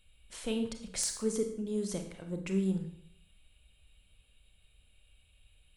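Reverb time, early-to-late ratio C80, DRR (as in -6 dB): 0.65 s, 12.0 dB, 5.5 dB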